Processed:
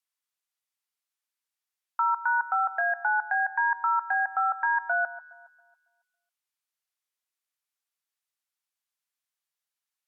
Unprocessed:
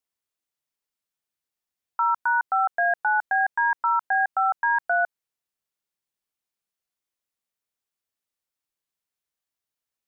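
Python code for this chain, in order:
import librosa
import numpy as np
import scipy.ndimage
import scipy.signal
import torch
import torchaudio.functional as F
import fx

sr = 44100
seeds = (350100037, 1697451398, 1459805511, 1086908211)

y = fx.env_lowpass_down(x, sr, base_hz=1700.0, full_db=-21.0)
y = scipy.signal.sosfilt(scipy.signal.butter(2, 920.0, 'highpass', fs=sr, output='sos'), y)
y = fx.echo_alternate(y, sr, ms=138, hz=1600.0, feedback_pct=52, wet_db=-14)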